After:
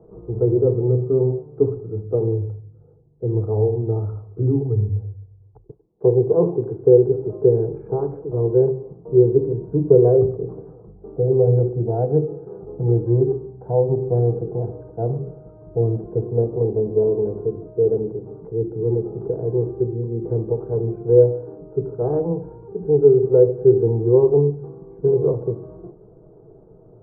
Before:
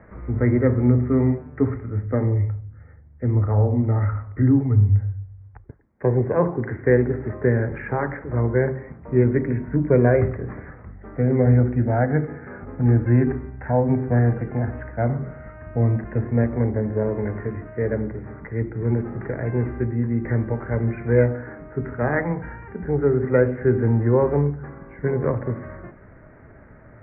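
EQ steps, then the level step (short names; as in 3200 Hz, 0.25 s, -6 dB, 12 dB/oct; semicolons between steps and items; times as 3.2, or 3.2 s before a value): synth low-pass 500 Hz, resonance Q 4.9; fixed phaser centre 370 Hz, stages 8; 0.0 dB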